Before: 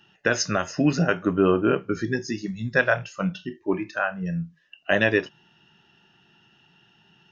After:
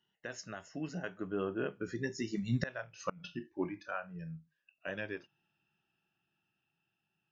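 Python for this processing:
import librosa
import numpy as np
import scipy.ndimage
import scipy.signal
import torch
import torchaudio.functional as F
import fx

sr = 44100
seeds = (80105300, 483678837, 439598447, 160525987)

y = fx.doppler_pass(x, sr, speed_mps=15, closest_m=1.4, pass_at_s=2.78)
y = fx.gate_flip(y, sr, shuts_db=-28.0, range_db=-28)
y = y * 10.0 ** (7.5 / 20.0)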